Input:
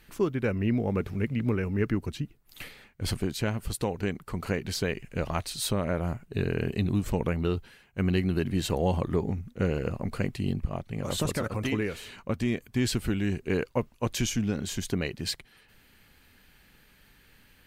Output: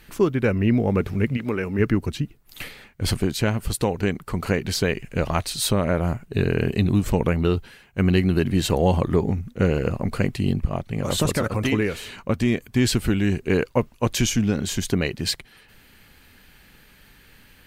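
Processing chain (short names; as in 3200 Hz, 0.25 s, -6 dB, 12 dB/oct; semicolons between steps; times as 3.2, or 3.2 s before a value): 1.36–1.78 HPF 630 Hz -> 180 Hz 6 dB/oct; gain +7 dB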